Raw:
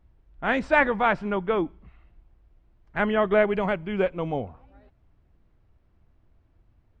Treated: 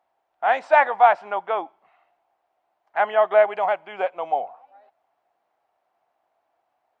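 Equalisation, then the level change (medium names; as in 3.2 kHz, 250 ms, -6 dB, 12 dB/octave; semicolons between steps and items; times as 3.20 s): resonant high-pass 740 Hz, resonance Q 4.9; -1.5 dB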